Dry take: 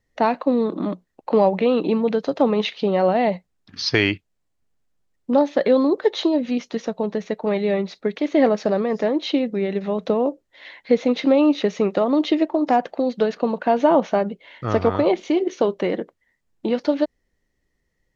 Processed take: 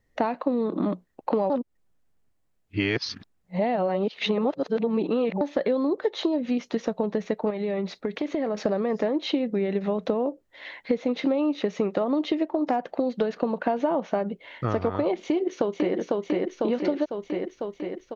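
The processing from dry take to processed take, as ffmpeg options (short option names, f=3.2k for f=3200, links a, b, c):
-filter_complex "[0:a]asettb=1/sr,asplit=3[a][b][c];[a]atrim=end=7.504[d];[b]atrim=start=7.5:end=8.57,asetpts=PTS-STARTPTS,afade=t=in:d=0.004:c=qsin,afade=t=out:st=1.066:d=0.004:c=qsin,acompressor=threshold=-25dB:ratio=6:attack=3.2:release=140:knee=1:detection=peak[e];[c]atrim=start=8.566[f];[d][e]acrossfade=d=0.004:c1=hsin:c2=qsin[g];[g][f]acrossfade=d=0.004:c1=qsin:c2=hsin,asplit=2[h][i];[i]afade=t=in:st=15.22:d=0.01,afade=t=out:st=15.95:d=0.01,aecho=0:1:500|1000|1500|2000|2500|3000|3500|4000|4500|5000:0.630957|0.410122|0.266579|0.173277|0.11263|0.0732094|0.0475861|0.030931|0.0201051|0.0130683[j];[h][j]amix=inputs=2:normalize=0,asplit=3[k][l][m];[k]atrim=end=1.502[n];[l]atrim=start=1.498:end=5.412,asetpts=PTS-STARTPTS,areverse[o];[m]atrim=start=5.408[p];[n][o]acrossfade=d=0.004:c1=hsin:c2=hsin[q];[q][p]acrossfade=d=0.004:c1=hsin:c2=hsin,equalizer=f=5.3k:w=0.56:g=-4.5,acompressor=threshold=-24dB:ratio=6,volume=2.5dB"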